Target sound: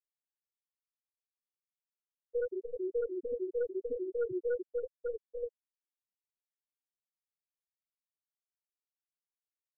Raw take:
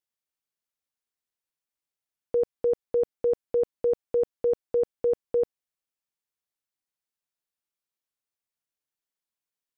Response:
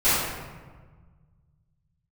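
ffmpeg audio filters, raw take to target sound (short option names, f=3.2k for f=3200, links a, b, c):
-filter_complex "[0:a]asplit=2[a][b];[b]adelay=31,volume=-13dB[c];[a][c]amix=inputs=2:normalize=0,agate=range=-27dB:threshold=-26dB:ratio=16:detection=peak,flanger=delay=20:depth=4.6:speed=2.4,asettb=1/sr,asplit=3[d][e][f];[d]atrim=end=2.384[g];[e]atrim=start=2.38:end=4.62,asetpts=PTS-STARTPTS,afade=t=in:d=0.004:c=qsin,afade=t=out:st=2.236:d=0.004:c=qsin,asplit=7[h][i][j][k][l][m][n];[i]adelay=143,afreqshift=-110,volume=-11dB[o];[j]adelay=286,afreqshift=-220,volume=-15.9dB[p];[k]adelay=429,afreqshift=-330,volume=-20.8dB[q];[l]adelay=572,afreqshift=-440,volume=-25.6dB[r];[m]adelay=715,afreqshift=-550,volume=-30.5dB[s];[n]adelay=858,afreqshift=-660,volume=-35.4dB[t];[h][o][p][q][r][s][t]amix=inputs=7:normalize=0,atrim=end_sample=98784[u];[f]atrim=start=4.616[v];[g][u]acrossfade=d=0.004:c1=hsin:c2=qsin[w];[w][v]acrossfade=d=0.004:c1=qsin:c2=hsin,aeval=exprs='(tanh(44.7*val(0)+0.25)-tanh(0.25))/44.7':c=same,flanger=delay=7.2:depth=8.6:regen=-33:speed=0.38:shape=sinusoidal,afftfilt=real='re*gte(hypot(re,im),0.0501)':imag='im*gte(hypot(re,im),0.0501)':win_size=1024:overlap=0.75,volume=6.5dB"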